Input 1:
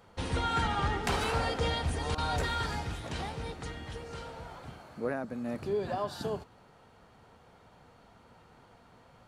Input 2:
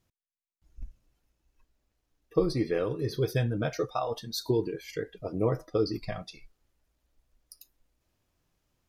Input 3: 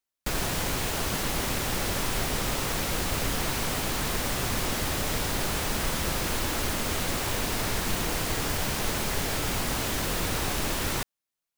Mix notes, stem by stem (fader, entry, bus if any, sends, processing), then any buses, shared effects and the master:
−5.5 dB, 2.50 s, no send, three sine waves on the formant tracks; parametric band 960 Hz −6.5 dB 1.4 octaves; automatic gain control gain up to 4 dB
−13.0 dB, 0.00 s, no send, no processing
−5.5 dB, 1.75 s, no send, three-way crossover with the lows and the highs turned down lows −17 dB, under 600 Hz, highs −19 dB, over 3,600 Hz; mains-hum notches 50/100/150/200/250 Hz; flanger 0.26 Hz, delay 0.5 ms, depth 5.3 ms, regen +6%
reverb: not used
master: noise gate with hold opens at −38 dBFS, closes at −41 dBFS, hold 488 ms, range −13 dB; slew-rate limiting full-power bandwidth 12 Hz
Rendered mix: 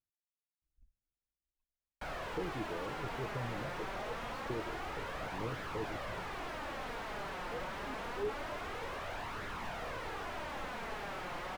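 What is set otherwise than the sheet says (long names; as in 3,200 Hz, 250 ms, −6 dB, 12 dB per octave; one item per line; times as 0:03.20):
stem 1 −5.5 dB → −16.0 dB
stem 3 −5.5 dB → +1.0 dB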